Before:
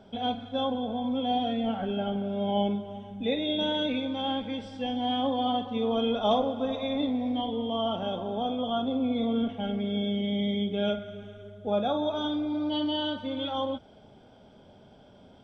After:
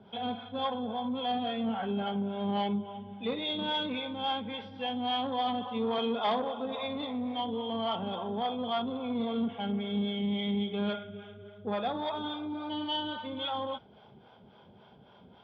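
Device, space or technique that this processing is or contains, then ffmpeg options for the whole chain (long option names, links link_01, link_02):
guitar amplifier with harmonic tremolo: -filter_complex "[0:a]asettb=1/sr,asplit=3[link_01][link_02][link_03];[link_01]atrim=end=5.984[link_04];[link_02]atrim=start=5.98:end=6.78,asetpts=PTS-STARTPTS,afade=type=in:duration=0.004:curve=qsin,afade=type=out:start_time=0.796:duration=0.004:curve=qsin,highpass=170[link_05];[link_03]atrim=start=6.776[link_06];[link_04][link_05]acrossfade=duration=0.004:curve1=hsin:curve2=qsin[link_07];[link_07][link_06]acrossfade=duration=0.004:curve1=qsin:curve2=hsin,acrossover=split=470[link_08][link_09];[link_08]aeval=exprs='val(0)*(1-0.7/2+0.7/2*cos(2*PI*3.6*n/s))':channel_layout=same[link_10];[link_09]aeval=exprs='val(0)*(1-0.7/2-0.7/2*cos(2*PI*3.6*n/s))':channel_layout=same[link_11];[link_10][link_11]amix=inputs=2:normalize=0,asoftclip=type=tanh:threshold=-24dB,highpass=86,equalizer=frequency=92:width_type=q:width=4:gain=-4,equalizer=frequency=280:width_type=q:width=4:gain=-9,equalizer=frequency=600:width_type=q:width=4:gain=-7,equalizer=frequency=1000:width_type=q:width=4:gain=5,lowpass=frequency=3900:width=0.5412,lowpass=frequency=3900:width=1.3066,volume=3.5dB"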